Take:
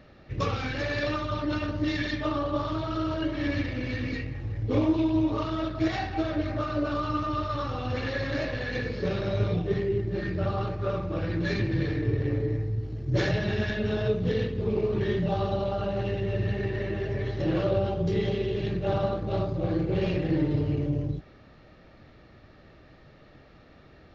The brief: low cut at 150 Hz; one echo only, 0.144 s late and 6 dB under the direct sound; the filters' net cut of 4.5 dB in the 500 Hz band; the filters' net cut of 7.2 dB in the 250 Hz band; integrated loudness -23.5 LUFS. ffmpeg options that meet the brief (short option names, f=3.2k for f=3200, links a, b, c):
-af "highpass=150,equalizer=f=250:t=o:g=-8.5,equalizer=f=500:t=o:g=-3,aecho=1:1:144:0.501,volume=9dB"